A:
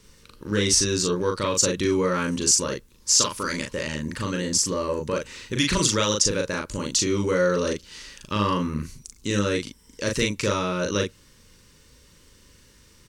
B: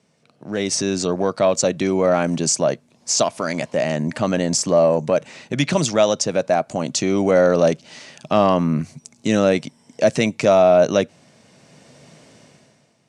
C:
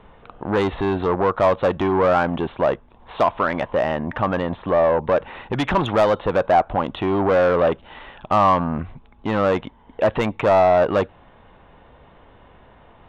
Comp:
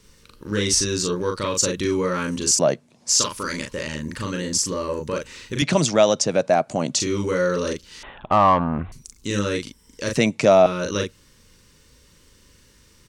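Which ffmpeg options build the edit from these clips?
-filter_complex "[1:a]asplit=3[a][b][c];[0:a]asplit=5[d][e][f][g][h];[d]atrim=end=2.592[i];[a]atrim=start=2.588:end=3.092[j];[e]atrim=start=3.088:end=5.622[k];[b]atrim=start=5.618:end=7.002[l];[f]atrim=start=6.998:end=8.032[m];[2:a]atrim=start=8.028:end=8.922[n];[g]atrim=start=8.918:end=10.172[o];[c]atrim=start=10.168:end=10.662[p];[h]atrim=start=10.658[q];[i][j]acrossfade=d=0.004:c1=hsin:c2=hsin[r];[r][k]acrossfade=d=0.004:c1=hsin:c2=hsin[s];[s][l]acrossfade=d=0.004:c1=hsin:c2=hsin[t];[t][m]acrossfade=d=0.004:c1=hsin:c2=hsin[u];[u][n]acrossfade=d=0.004:c1=hsin:c2=hsin[v];[v][o]acrossfade=d=0.004:c1=hsin:c2=hsin[w];[w][p]acrossfade=d=0.004:c1=hsin:c2=hsin[x];[x][q]acrossfade=d=0.004:c1=hsin:c2=hsin"

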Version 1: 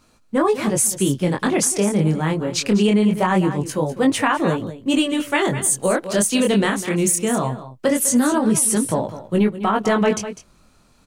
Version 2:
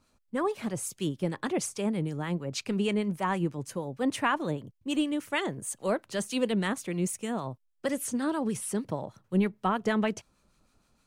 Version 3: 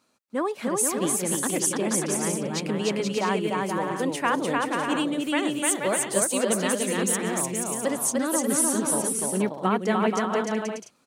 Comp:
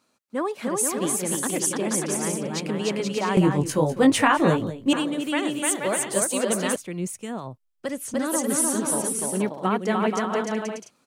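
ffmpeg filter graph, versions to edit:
-filter_complex "[2:a]asplit=3[a][b][c];[a]atrim=end=3.372[d];[0:a]atrim=start=3.368:end=4.932[e];[b]atrim=start=4.928:end=6.762[f];[1:a]atrim=start=6.758:end=8.142[g];[c]atrim=start=8.138[h];[d][e]acrossfade=d=0.004:c1=hsin:c2=hsin[i];[i][f]acrossfade=d=0.004:c1=hsin:c2=hsin[j];[j][g]acrossfade=d=0.004:c1=hsin:c2=hsin[k];[k][h]acrossfade=d=0.004:c1=hsin:c2=hsin"

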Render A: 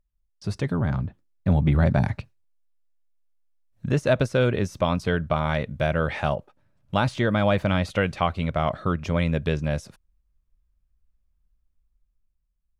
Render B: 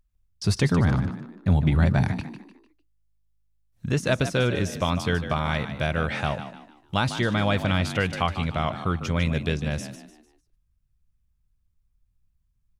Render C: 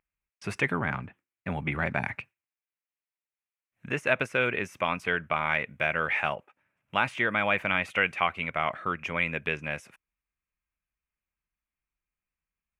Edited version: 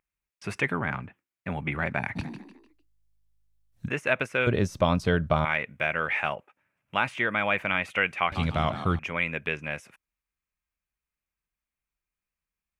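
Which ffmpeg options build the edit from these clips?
-filter_complex "[1:a]asplit=2[a][b];[2:a]asplit=4[c][d][e][f];[c]atrim=end=2.17[g];[a]atrim=start=2.15:end=3.89[h];[d]atrim=start=3.87:end=4.472[i];[0:a]atrim=start=4.468:end=5.452[j];[e]atrim=start=5.448:end=8.322[k];[b]atrim=start=8.318:end=8.992[l];[f]atrim=start=8.988[m];[g][h]acrossfade=d=0.02:c1=tri:c2=tri[n];[n][i]acrossfade=d=0.02:c1=tri:c2=tri[o];[o][j]acrossfade=d=0.004:c1=hsin:c2=hsin[p];[p][k]acrossfade=d=0.004:c1=hsin:c2=hsin[q];[q][l]acrossfade=d=0.004:c1=hsin:c2=hsin[r];[r][m]acrossfade=d=0.004:c1=hsin:c2=hsin"

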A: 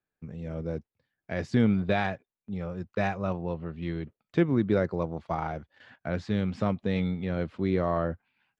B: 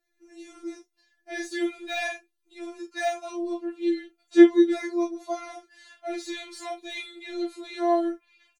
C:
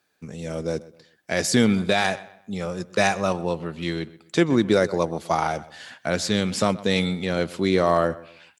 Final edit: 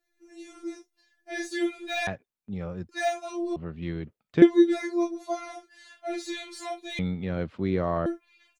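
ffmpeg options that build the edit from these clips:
-filter_complex "[0:a]asplit=3[a][b][c];[1:a]asplit=4[d][e][f][g];[d]atrim=end=2.072[h];[a]atrim=start=2.068:end=2.892[i];[e]atrim=start=2.888:end=3.562[j];[b]atrim=start=3.558:end=4.422[k];[f]atrim=start=4.418:end=6.992[l];[c]atrim=start=6.988:end=8.062[m];[g]atrim=start=8.058[n];[h][i]acrossfade=d=0.004:c1=hsin:c2=hsin[o];[o][j]acrossfade=d=0.004:c1=hsin:c2=hsin[p];[p][k]acrossfade=d=0.004:c1=hsin:c2=hsin[q];[q][l]acrossfade=d=0.004:c1=hsin:c2=hsin[r];[r][m]acrossfade=d=0.004:c1=hsin:c2=hsin[s];[s][n]acrossfade=d=0.004:c1=hsin:c2=hsin"

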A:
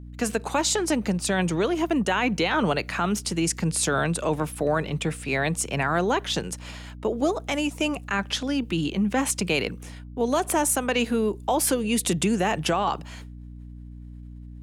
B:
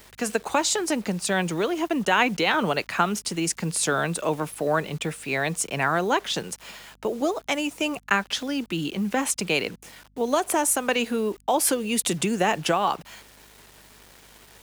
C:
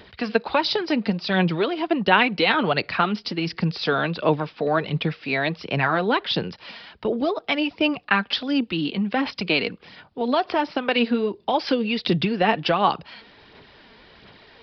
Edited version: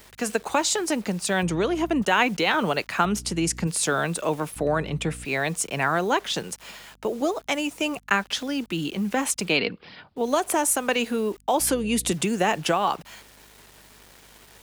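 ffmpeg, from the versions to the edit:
-filter_complex "[0:a]asplit=4[a][b][c][d];[1:a]asplit=6[e][f][g][h][i][j];[e]atrim=end=1.432[k];[a]atrim=start=1.428:end=2.022[l];[f]atrim=start=2.018:end=3.052[m];[b]atrim=start=3.048:end=3.672[n];[g]atrim=start=3.668:end=4.562[o];[c]atrim=start=4.558:end=5.252[p];[h]atrim=start=5.248:end=9.6[q];[2:a]atrim=start=9.44:end=10.27[r];[i]atrim=start=10.11:end=11.602[s];[d]atrim=start=11.598:end=12.122[t];[j]atrim=start=12.118[u];[k][l]acrossfade=d=0.004:c1=hsin:c2=hsin[v];[v][m]acrossfade=d=0.004:c1=hsin:c2=hsin[w];[w][n]acrossfade=d=0.004:c1=hsin:c2=hsin[x];[x][o]acrossfade=d=0.004:c1=hsin:c2=hsin[y];[y][p]acrossfade=d=0.004:c1=hsin:c2=hsin[z];[z][q]acrossfade=d=0.004:c1=hsin:c2=hsin[aa];[aa][r]acrossfade=d=0.16:c1=tri:c2=tri[ab];[ab][s]acrossfade=d=0.16:c1=tri:c2=tri[ac];[ac][t]acrossfade=d=0.004:c1=hsin:c2=hsin[ad];[ad][u]acrossfade=d=0.004:c1=hsin:c2=hsin"

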